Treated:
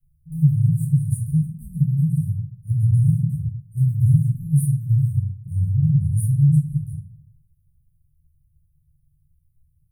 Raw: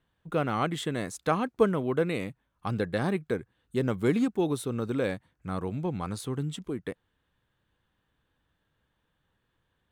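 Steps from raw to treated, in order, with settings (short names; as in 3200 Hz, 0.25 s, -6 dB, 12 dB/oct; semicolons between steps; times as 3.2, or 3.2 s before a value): Chebyshev band-stop 150–9400 Hz, order 5; shoebox room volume 60 m³, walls mixed, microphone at 1.4 m; dynamic EQ 120 Hz, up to +7 dB, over -40 dBFS, Q 1.5; gain +5.5 dB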